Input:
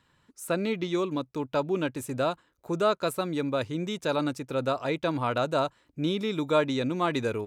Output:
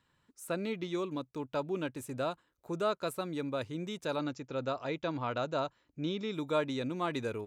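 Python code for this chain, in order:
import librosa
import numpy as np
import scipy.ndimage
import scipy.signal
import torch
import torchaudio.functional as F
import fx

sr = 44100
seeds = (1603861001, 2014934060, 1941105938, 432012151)

y = fx.brickwall_lowpass(x, sr, high_hz=7500.0, at=(4.19, 6.34))
y = y * 10.0 ** (-7.0 / 20.0)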